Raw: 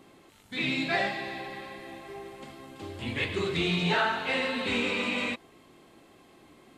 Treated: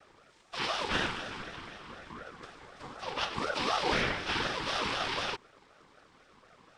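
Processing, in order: noise vocoder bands 8; ring modulator with a swept carrier 820 Hz, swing 25%, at 4 Hz

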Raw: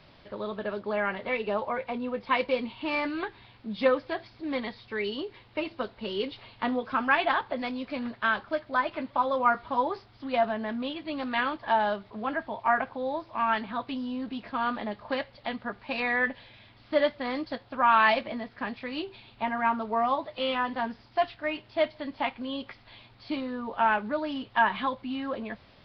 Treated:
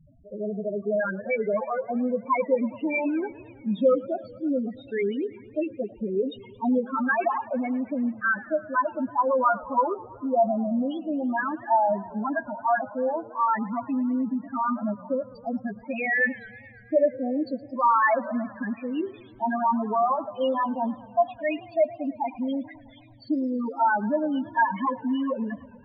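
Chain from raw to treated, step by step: dynamic EQ 170 Hz, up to +4 dB, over -45 dBFS, Q 1.3; in parallel at 0 dB: limiter -19 dBFS, peak gain reduction 9 dB; on the sum: loudest bins only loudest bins 4; warbling echo 0.109 s, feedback 74%, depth 205 cents, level -20.5 dB

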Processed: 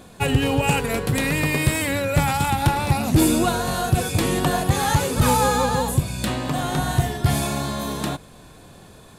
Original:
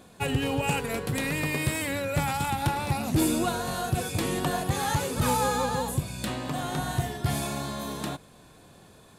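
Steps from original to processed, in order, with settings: low shelf 61 Hz +8 dB; gain +6.5 dB

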